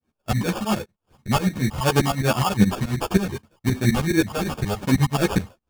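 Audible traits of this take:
tremolo saw up 9.5 Hz, depth 95%
phaser sweep stages 6, 2.7 Hz, lowest notch 320–2,600 Hz
aliases and images of a low sample rate 2,000 Hz, jitter 0%
a shimmering, thickened sound

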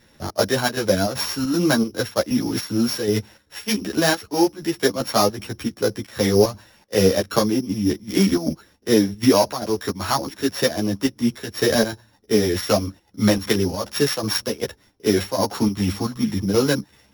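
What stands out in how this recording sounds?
a buzz of ramps at a fixed pitch in blocks of 8 samples
chopped level 2.6 Hz, depth 60%, duty 75%
a shimmering, thickened sound

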